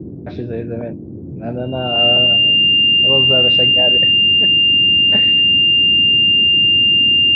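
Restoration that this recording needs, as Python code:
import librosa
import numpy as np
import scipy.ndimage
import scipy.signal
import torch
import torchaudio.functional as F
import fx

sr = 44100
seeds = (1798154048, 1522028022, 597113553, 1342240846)

y = fx.notch(x, sr, hz=2800.0, q=30.0)
y = fx.noise_reduce(y, sr, print_start_s=0.93, print_end_s=1.43, reduce_db=30.0)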